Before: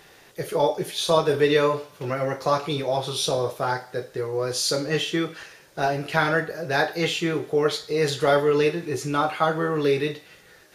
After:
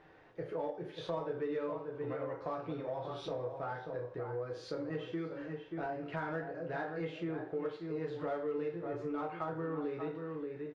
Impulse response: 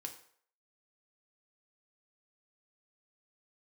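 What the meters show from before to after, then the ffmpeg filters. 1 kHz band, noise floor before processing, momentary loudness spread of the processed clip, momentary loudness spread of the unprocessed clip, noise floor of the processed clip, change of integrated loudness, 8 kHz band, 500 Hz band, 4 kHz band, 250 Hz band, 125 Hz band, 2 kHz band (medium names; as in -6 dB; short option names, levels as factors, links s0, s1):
-16.0 dB, -52 dBFS, 4 LU, 10 LU, -52 dBFS, -15.5 dB, under -30 dB, -15.0 dB, -26.0 dB, -11.5 dB, -14.5 dB, -19.0 dB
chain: -filter_complex "[0:a]lowpass=1600,asplit=2[s0][s1];[s1]adelay=583.1,volume=0.355,highshelf=f=4000:g=-13.1[s2];[s0][s2]amix=inputs=2:normalize=0,asplit=2[s3][s4];[s4]asoftclip=type=tanh:threshold=0.0668,volume=0.398[s5];[s3][s5]amix=inputs=2:normalize=0[s6];[1:a]atrim=start_sample=2205,atrim=end_sample=3528[s7];[s6][s7]afir=irnorm=-1:irlink=0,acompressor=threshold=0.0224:ratio=2.5,volume=0.501"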